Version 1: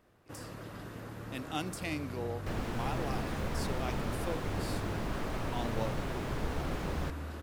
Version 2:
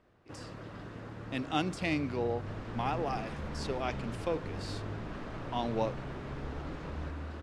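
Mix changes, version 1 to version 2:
speech +6.0 dB
second sound −8.5 dB
master: add high-frequency loss of the air 100 metres

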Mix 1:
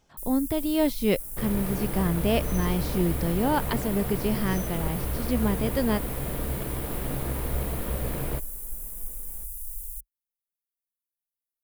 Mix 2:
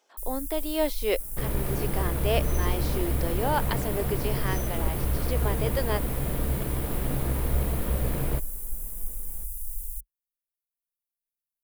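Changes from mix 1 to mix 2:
speech: add high-pass filter 380 Hz 24 dB per octave
master: add low-shelf EQ 180 Hz +4.5 dB

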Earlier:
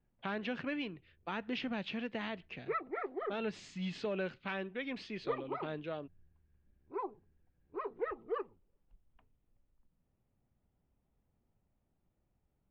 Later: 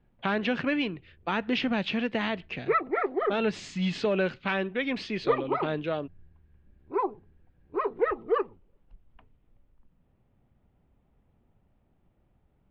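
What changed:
speech +10.5 dB
background +11.5 dB

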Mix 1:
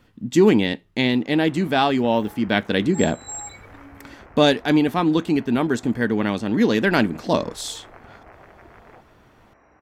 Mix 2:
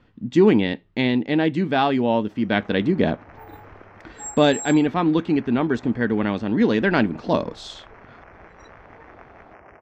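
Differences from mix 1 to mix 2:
speech: add high-frequency loss of the air 170 metres
background: entry +1.25 s

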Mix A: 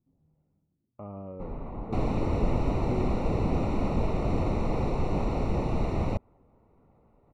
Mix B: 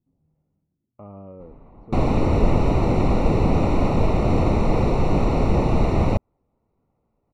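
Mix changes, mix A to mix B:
first sound −10.0 dB
second sound +9.0 dB

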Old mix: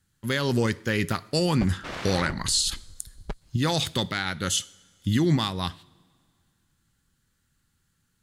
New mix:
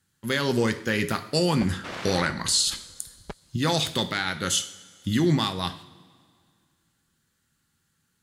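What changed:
speech: send +9.5 dB
master: add high-pass filter 140 Hz 6 dB per octave

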